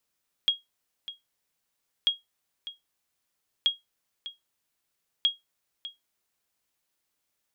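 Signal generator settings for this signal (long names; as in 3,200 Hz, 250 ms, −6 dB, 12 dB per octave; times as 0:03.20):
ping with an echo 3,280 Hz, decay 0.17 s, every 1.59 s, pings 4, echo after 0.60 s, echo −15 dB −14.5 dBFS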